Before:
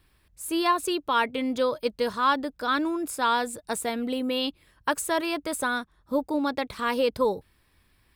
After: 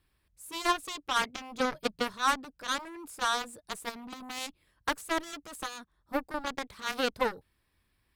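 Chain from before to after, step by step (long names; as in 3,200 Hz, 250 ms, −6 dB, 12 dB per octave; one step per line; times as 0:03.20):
0:01.60–0:02.08: parametric band 150 Hz +13 dB 0.79 octaves
harmonic generator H 4 −27 dB, 6 −33 dB, 7 −13 dB, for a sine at −10.5 dBFS
level −4.5 dB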